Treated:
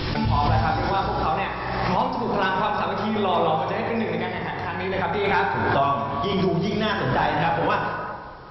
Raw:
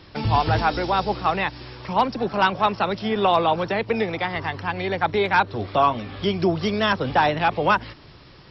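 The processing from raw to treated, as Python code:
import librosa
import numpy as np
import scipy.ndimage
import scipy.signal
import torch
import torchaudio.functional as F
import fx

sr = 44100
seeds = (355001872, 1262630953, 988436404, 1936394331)

y = fx.low_shelf(x, sr, hz=100.0, db=8.0)
y = fx.hum_notches(y, sr, base_hz=50, count=4)
y = fx.rev_plate(y, sr, seeds[0], rt60_s=2.0, hf_ratio=0.45, predelay_ms=0, drr_db=-1.0)
y = fx.pre_swell(y, sr, db_per_s=25.0)
y = y * librosa.db_to_amplitude(-6.5)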